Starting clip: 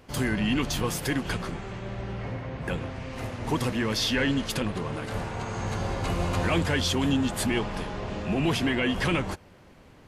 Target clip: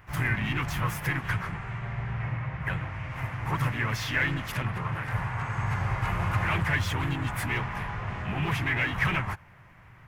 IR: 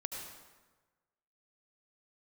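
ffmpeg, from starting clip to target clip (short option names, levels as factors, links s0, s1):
-filter_complex "[0:a]volume=11.9,asoftclip=hard,volume=0.0841,asplit=3[s0][s1][s2];[s1]asetrate=52444,aresample=44100,atempo=0.840896,volume=0.631[s3];[s2]asetrate=58866,aresample=44100,atempo=0.749154,volume=0.158[s4];[s0][s3][s4]amix=inputs=3:normalize=0,equalizer=f=125:t=o:w=1:g=9,equalizer=f=250:t=o:w=1:g=-10,equalizer=f=500:t=o:w=1:g=-9,equalizer=f=1000:t=o:w=1:g=5,equalizer=f=2000:t=o:w=1:g=9,equalizer=f=4000:t=o:w=1:g=-10,equalizer=f=8000:t=o:w=1:g=-7,volume=0.708"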